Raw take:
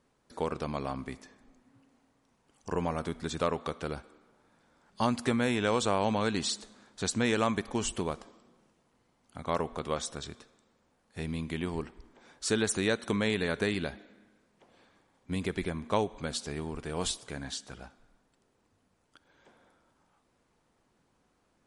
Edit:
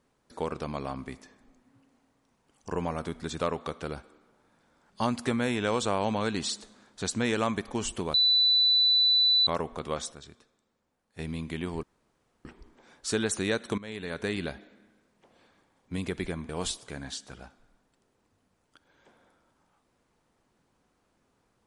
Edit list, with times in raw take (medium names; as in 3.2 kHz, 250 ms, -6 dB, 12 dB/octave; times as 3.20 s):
8.14–9.47 s: bleep 3.98 kHz -19 dBFS
10.12–11.19 s: gain -7.5 dB
11.83 s: insert room tone 0.62 s
13.16–13.79 s: fade in, from -18 dB
15.87–16.89 s: delete